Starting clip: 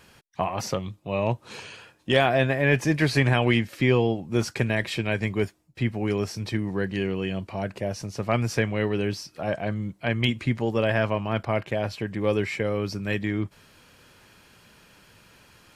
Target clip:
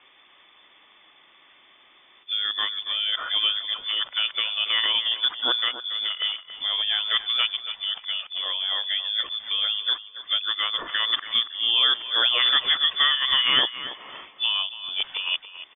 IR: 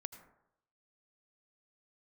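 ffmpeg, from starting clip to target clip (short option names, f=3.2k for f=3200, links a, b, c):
-filter_complex "[0:a]areverse,lowpass=f=3.1k:t=q:w=0.5098,lowpass=f=3.1k:t=q:w=0.6013,lowpass=f=3.1k:t=q:w=0.9,lowpass=f=3.1k:t=q:w=2.563,afreqshift=-3600,asplit=2[a][b];[b]adelay=280,lowpass=f=2.8k:p=1,volume=-11dB,asplit=2[c][d];[d]adelay=280,lowpass=f=2.8k:p=1,volume=0.31,asplit=2[e][f];[f]adelay=280,lowpass=f=2.8k:p=1,volume=0.31[g];[a][c][e][g]amix=inputs=4:normalize=0"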